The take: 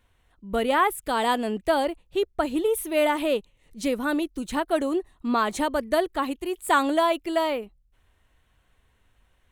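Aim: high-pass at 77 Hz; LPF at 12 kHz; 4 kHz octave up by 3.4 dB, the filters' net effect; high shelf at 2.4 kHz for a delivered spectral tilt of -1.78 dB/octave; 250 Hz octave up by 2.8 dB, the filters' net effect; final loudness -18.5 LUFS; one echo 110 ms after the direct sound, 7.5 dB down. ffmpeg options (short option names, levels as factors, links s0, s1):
-af "highpass=77,lowpass=12000,equalizer=f=250:t=o:g=3.5,highshelf=f=2400:g=-4.5,equalizer=f=4000:t=o:g=8.5,aecho=1:1:110:0.422,volume=1.88"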